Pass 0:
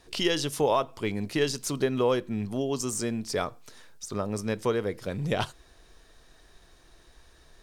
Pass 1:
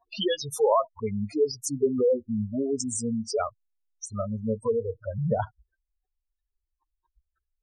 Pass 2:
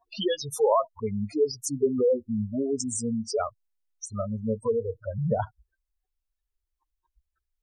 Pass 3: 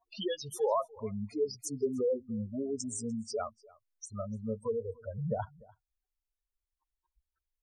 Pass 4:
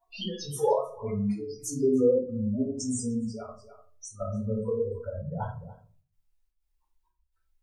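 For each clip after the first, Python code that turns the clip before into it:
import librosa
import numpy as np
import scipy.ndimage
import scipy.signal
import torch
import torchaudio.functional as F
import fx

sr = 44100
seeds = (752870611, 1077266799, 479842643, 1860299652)

y1 = fx.spec_gate(x, sr, threshold_db=-10, keep='strong')
y1 = fx.noise_reduce_blind(y1, sr, reduce_db=29)
y1 = y1 * 10.0 ** (4.0 / 20.0)
y2 = fx.dynamic_eq(y1, sr, hz=2300.0, q=1.7, threshold_db=-50.0, ratio=4.0, max_db=-5)
y3 = y2 + 10.0 ** (-23.5 / 20.0) * np.pad(y2, (int(296 * sr / 1000.0), 0))[:len(y2)]
y3 = y3 * 10.0 ** (-7.5 / 20.0)
y4 = fx.step_gate(y3, sr, bpm=125, pattern='xx.xxx.xxxx..xxx', floor_db=-12.0, edge_ms=4.5)
y4 = fx.room_shoebox(y4, sr, seeds[0], volume_m3=250.0, walls='furnished', distance_m=4.4)
y4 = y4 * 10.0 ** (-2.0 / 20.0)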